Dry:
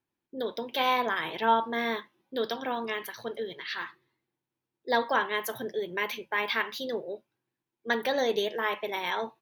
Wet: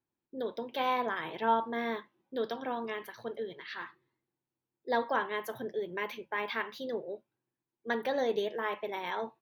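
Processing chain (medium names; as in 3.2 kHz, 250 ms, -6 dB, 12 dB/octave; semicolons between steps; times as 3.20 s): treble shelf 2.2 kHz -9.5 dB; trim -2.5 dB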